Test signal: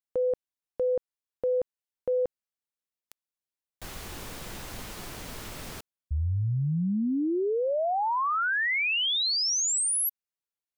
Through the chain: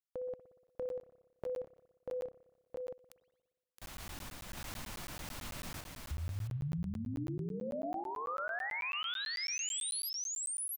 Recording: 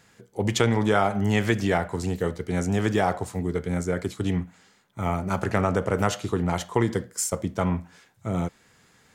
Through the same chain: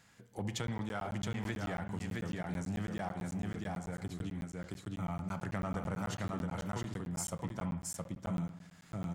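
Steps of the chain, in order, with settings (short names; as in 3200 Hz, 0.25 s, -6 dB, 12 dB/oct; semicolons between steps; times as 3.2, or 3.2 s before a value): in parallel at -5 dB: hard clip -18.5 dBFS; on the sum: dynamic EQ 160 Hz, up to +7 dB, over -38 dBFS, Q 2.6; random-step tremolo 3.5 Hz, depth 55%; bell 420 Hz -8.5 dB 0.52 oct; on a send: echo 0.668 s -4 dB; on the sum: compressor 2.5:1, threshold -36 dBFS; spring tank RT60 1.2 s, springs 59 ms, chirp 80 ms, DRR 11.5 dB; crackling interface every 0.11 s, samples 512, zero, from 0.67; gain -5 dB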